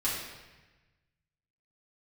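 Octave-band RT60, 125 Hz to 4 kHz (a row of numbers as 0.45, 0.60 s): 1.8, 1.4, 1.2, 1.1, 1.3, 1.0 s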